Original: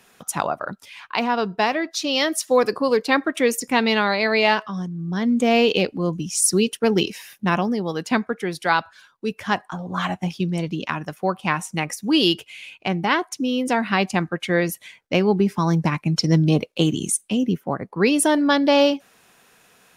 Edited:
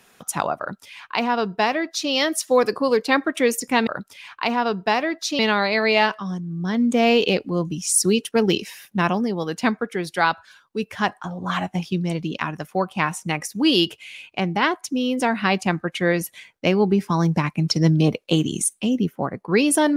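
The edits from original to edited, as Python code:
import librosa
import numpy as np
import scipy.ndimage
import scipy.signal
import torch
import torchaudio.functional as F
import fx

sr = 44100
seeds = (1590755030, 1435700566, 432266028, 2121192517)

y = fx.edit(x, sr, fx.duplicate(start_s=0.59, length_s=1.52, to_s=3.87), tone=tone)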